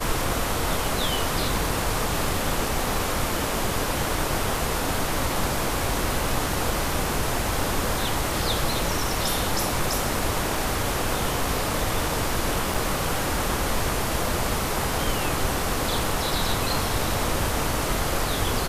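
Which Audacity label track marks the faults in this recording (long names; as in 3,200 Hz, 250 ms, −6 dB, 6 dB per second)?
12.740000	12.740000	drop-out 3.8 ms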